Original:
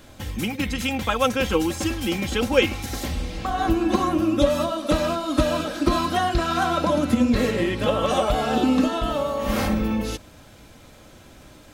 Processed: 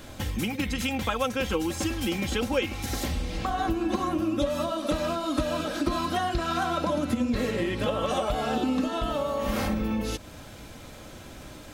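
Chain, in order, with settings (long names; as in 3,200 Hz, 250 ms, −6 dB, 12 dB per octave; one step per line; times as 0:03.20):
downward compressor 2.5 to 1, threshold −32 dBFS, peak gain reduction 13.5 dB
level +3.5 dB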